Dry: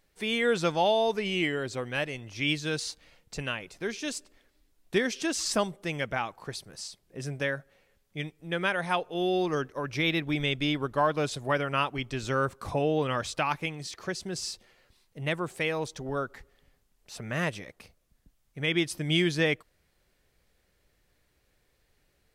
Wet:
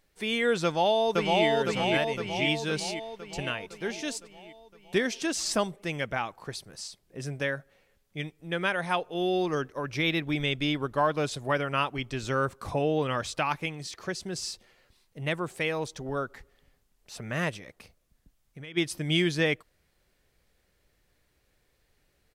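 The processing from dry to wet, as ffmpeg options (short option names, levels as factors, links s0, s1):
-filter_complex "[0:a]asplit=2[s0][s1];[s1]afade=t=in:st=0.64:d=0.01,afade=t=out:st=1.46:d=0.01,aecho=0:1:510|1020|1530|2040|2550|3060|3570|4080|4590:0.891251|0.534751|0.32085|0.19251|0.115506|0.0693037|0.0415822|0.0249493|0.0149696[s2];[s0][s2]amix=inputs=2:normalize=0,asplit=3[s3][s4][s5];[s3]afade=t=out:st=17.56:d=0.02[s6];[s4]acompressor=threshold=0.01:ratio=6:attack=3.2:release=140:knee=1:detection=peak,afade=t=in:st=17.56:d=0.02,afade=t=out:st=18.76:d=0.02[s7];[s5]afade=t=in:st=18.76:d=0.02[s8];[s6][s7][s8]amix=inputs=3:normalize=0"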